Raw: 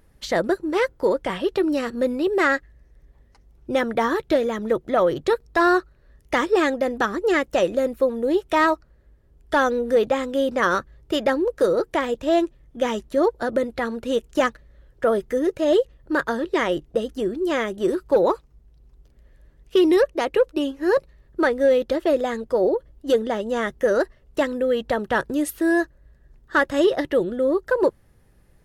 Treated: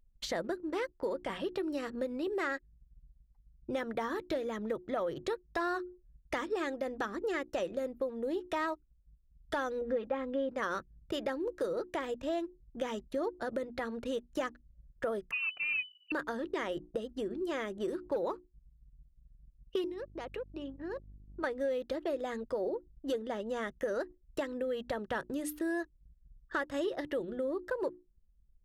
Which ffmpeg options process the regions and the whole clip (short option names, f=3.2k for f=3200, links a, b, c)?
-filter_complex "[0:a]asettb=1/sr,asplit=3[a][b][c];[a]atrim=end=9.814[d];[b]atrim=start=9.81:end=10.5,asetpts=PTS-STARTPTS,afade=t=in:d=0.004:c=qsin,afade=t=out:st=0.686:d=0.004:c=qsin,lowpass=2.5k,aecho=1:1:3.7:0.62,atrim=end_sample=30429[e];[c]atrim=start=10.496[f];[d][e]acrossfade=d=0.004:c1=hsin:c2=qsin[g];[g][f]acrossfade=d=0.004:c1=qsin:c2=hsin,asettb=1/sr,asplit=3[h][i][j];[h]atrim=end=15.314[k];[i]atrim=start=15.31:end=16.12,asetpts=PTS-STARTPTS,afade=t=in:d=0.004:c=qsin,afade=t=out:st=0.806:d=0.004:c=qsin,aeval=exprs='if(lt(val(0),0),0.708*val(0),val(0))':c=same,lowpass=f=2.6k:t=q:w=0.5098,lowpass=f=2.6k:t=q:w=0.6013,lowpass=f=2.6k:t=q:w=0.9,lowpass=f=2.6k:t=q:w=2.563,afreqshift=-3000[l];[j]atrim=start=16.116[m];[k][l]acrossfade=d=0.004:c1=hsin:c2=qsin[n];[n][m]acrossfade=d=0.004:c1=qsin:c2=hsin,asettb=1/sr,asplit=3[o][p][q];[o]atrim=end=19.844[r];[p]atrim=start=19.84:end=21.44,asetpts=PTS-STARTPTS,afade=t=in:d=0.004:c=qsin,afade=t=out:st=1.596:d=0.004:c=qsin,acompressor=threshold=-38dB:ratio=2.5:attack=3.2:release=140:knee=1:detection=peak,aeval=exprs='val(0)+0.00447*(sin(2*PI*50*n/s)+sin(2*PI*2*50*n/s)/2+sin(2*PI*3*50*n/s)/3+sin(2*PI*4*50*n/s)/4+sin(2*PI*5*50*n/s)/5)':c=same[s];[q]atrim=start=21.436[t];[r][s]acrossfade=d=0.004:c1=hsin:c2=qsin[u];[u][t]acrossfade=d=0.004:c1=qsin:c2=hsin,bandreject=f=60:t=h:w=6,bandreject=f=120:t=h:w=6,bandreject=f=180:t=h:w=6,bandreject=f=240:t=h:w=6,bandreject=f=300:t=h:w=6,bandreject=f=360:t=h:w=6,anlmdn=0.158,acompressor=threshold=-31dB:ratio=2.5,volume=-5dB"